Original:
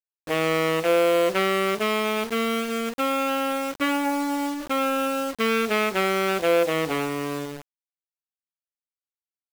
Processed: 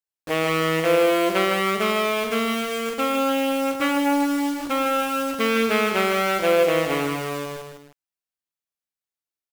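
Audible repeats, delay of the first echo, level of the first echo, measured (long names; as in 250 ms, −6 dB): 2, 155 ms, −6.0 dB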